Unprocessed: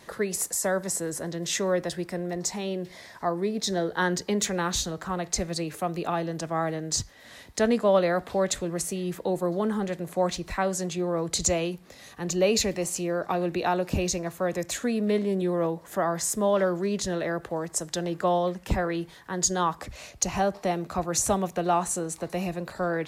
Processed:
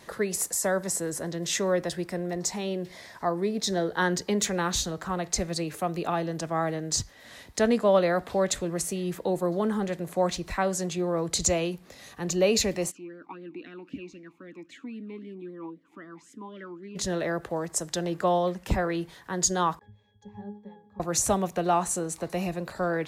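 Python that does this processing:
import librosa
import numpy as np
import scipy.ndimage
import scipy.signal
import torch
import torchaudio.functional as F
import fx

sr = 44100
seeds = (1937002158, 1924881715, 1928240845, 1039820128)

y = fx.vowel_sweep(x, sr, vowels='i-u', hz=3.8, at=(12.9, 16.95), fade=0.02)
y = fx.octave_resonator(y, sr, note='G#', decay_s=0.31, at=(19.79, 21.0))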